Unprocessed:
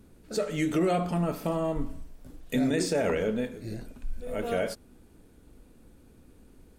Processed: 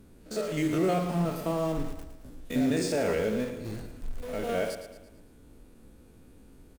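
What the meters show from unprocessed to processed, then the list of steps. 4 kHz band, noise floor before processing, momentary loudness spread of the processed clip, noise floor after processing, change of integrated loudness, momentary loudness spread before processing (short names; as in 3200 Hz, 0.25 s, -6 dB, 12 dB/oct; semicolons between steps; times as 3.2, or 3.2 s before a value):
-0.5 dB, -57 dBFS, 15 LU, -54 dBFS, -0.5 dB, 15 LU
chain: stepped spectrum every 50 ms; in parallel at -11 dB: wrapped overs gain 34.5 dB; on the sum: feedback echo 0.112 s, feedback 46%, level -10 dB; ending taper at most 190 dB/s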